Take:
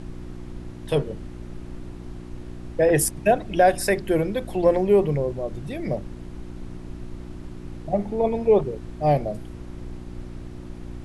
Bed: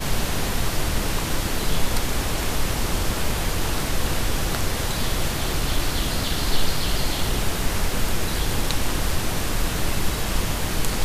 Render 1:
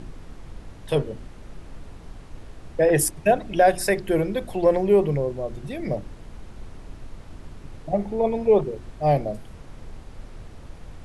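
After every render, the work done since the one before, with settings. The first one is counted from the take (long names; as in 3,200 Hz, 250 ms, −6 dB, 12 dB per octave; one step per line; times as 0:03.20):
hum removal 60 Hz, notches 6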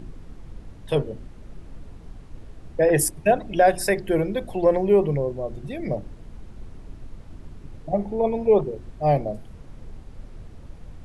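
broadband denoise 6 dB, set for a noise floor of −43 dBFS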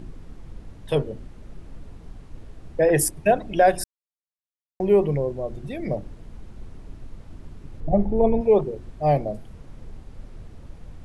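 0:03.84–0:04.80: silence
0:07.80–0:08.41: spectral tilt −2.5 dB per octave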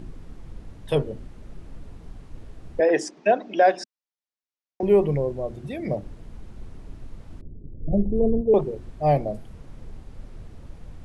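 0:02.80–0:04.83: elliptic band-pass filter 240–6,000 Hz
0:05.51–0:06.03: high-pass filter 63 Hz
0:07.41–0:08.54: inverse Chebyshev low-pass filter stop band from 2,900 Hz, stop band 80 dB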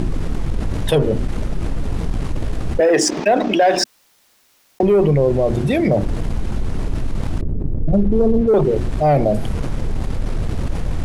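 leveller curve on the samples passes 1
envelope flattener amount 70%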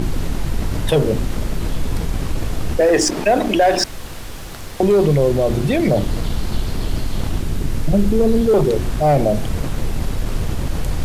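mix in bed −8.5 dB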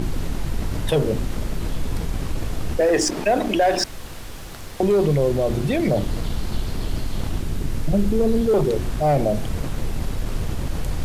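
level −4 dB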